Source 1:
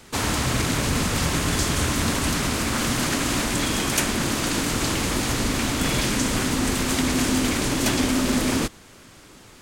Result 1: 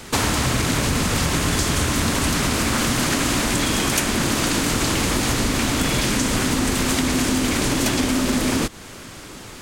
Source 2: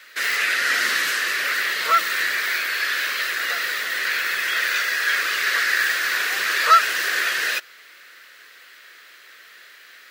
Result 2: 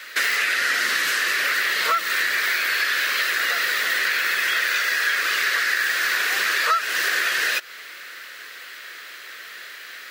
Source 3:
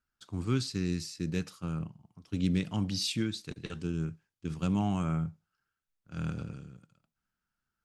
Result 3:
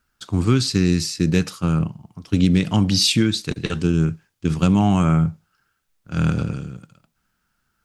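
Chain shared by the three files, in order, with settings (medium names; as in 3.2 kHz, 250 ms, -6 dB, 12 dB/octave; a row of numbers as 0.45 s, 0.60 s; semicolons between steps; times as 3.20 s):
compression 6:1, threshold -27 dBFS; normalise loudness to -20 LUFS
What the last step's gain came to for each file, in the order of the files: +9.5 dB, +8.0 dB, +15.5 dB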